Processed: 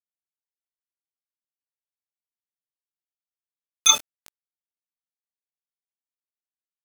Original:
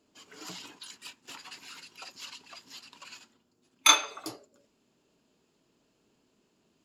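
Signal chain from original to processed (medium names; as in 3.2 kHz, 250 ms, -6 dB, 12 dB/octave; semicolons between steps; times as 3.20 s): graphic EQ 125/250/500/4000/8000 Hz -8/+5/+6/+4/+10 dB; loudest bins only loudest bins 32; small samples zeroed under -23.5 dBFS; upward compressor, threshold -26 dBFS; trim -1 dB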